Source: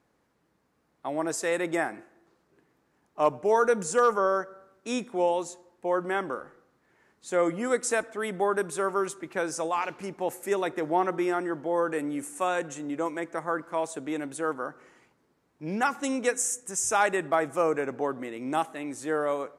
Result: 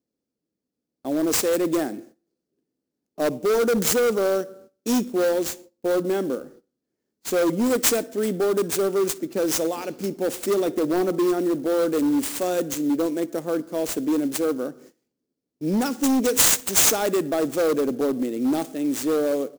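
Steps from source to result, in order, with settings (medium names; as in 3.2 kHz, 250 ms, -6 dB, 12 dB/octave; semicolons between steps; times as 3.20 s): band-stop 3.8 kHz, Q 9.2; gate -53 dBFS, range -21 dB; graphic EQ 250/500/1000/2000 Hz +11/+6/-11/-7 dB; on a send: feedback delay 61 ms, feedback 38%, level -23.5 dB; on the sum: overload inside the chain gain 19.5 dB; high-order bell 6.3 kHz +11.5 dB; sampling jitter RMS 0.023 ms; trim +2 dB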